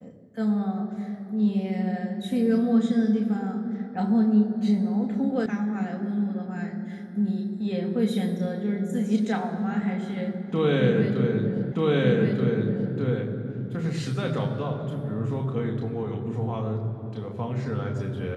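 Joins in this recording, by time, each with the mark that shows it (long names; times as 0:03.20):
0:05.46: cut off before it has died away
0:11.72: the same again, the last 1.23 s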